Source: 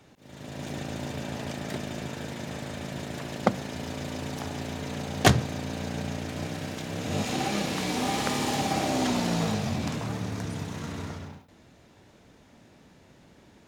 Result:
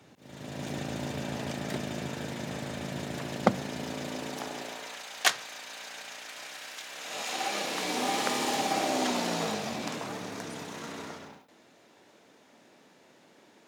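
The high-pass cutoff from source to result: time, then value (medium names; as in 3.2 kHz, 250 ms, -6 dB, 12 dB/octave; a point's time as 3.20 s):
3.50 s 100 Hz
4.58 s 360 Hz
5.03 s 1.2 kHz
6.90 s 1.2 kHz
7.98 s 310 Hz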